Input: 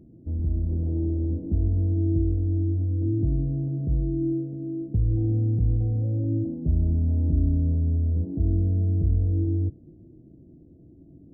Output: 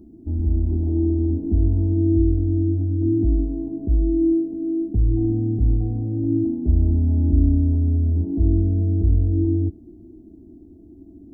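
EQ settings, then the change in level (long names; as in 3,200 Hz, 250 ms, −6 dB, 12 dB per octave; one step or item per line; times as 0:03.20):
phaser with its sweep stopped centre 530 Hz, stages 6
+8.5 dB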